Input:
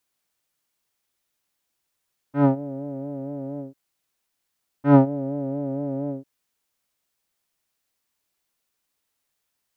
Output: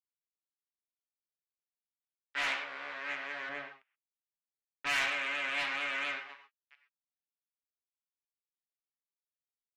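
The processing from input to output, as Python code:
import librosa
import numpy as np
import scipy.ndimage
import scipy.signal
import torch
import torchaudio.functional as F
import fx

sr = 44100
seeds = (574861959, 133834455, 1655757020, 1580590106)

p1 = fx.octave_divider(x, sr, octaves=2, level_db=-5.0, at=(2.37, 2.94))
p2 = fx.rider(p1, sr, range_db=4, speed_s=2.0)
p3 = p2 + fx.echo_feedback(p2, sr, ms=686, feedback_pct=23, wet_db=-16.5, dry=0)
p4 = fx.spec_gate(p3, sr, threshold_db=-30, keep='strong')
p5 = fx.fuzz(p4, sr, gain_db=24.0, gate_db=-33.0)
p6 = fx.highpass_res(p5, sr, hz=2200.0, q=1.9)
p7 = fx.air_absorb(p6, sr, metres=170.0)
p8 = fx.rev_gated(p7, sr, seeds[0], gate_ms=150, shape='flat', drr_db=6.0)
p9 = 10.0 ** (-24.5 / 20.0) * np.tanh(p8 / 10.0 ** (-24.5 / 20.0))
y = fx.tilt_eq(p9, sr, slope=-2.5, at=(3.49, 4.87))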